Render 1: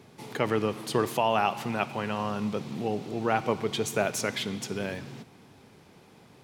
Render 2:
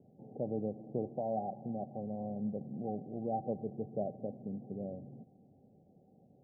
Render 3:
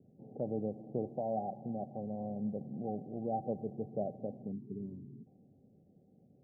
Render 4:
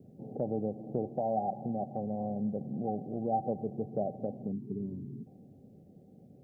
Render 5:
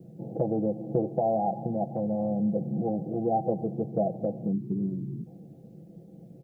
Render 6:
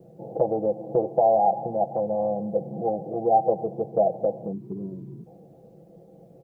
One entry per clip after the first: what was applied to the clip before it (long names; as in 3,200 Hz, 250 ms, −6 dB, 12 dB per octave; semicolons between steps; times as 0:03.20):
Chebyshev low-pass with heavy ripple 790 Hz, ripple 6 dB; level −5.5 dB
low-pass that shuts in the quiet parts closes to 400 Hz, open at −34 dBFS; gain on a spectral selection 0:04.52–0:05.27, 440–910 Hz −27 dB
downward compressor 1.5 to 1, threshold −47 dBFS, peak gain reduction 6.5 dB; dynamic equaliser 800 Hz, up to +4 dB, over −56 dBFS, Q 4.9; level +8.5 dB
comb filter 6 ms, depth 99%; level +4 dB
octave-band graphic EQ 125/250/500/1,000 Hz −4/−7/+6/+10 dB